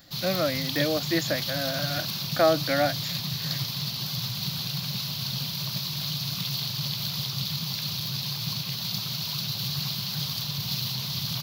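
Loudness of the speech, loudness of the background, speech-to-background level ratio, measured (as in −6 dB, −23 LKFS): −28.0 LKFS, −29.0 LKFS, 1.0 dB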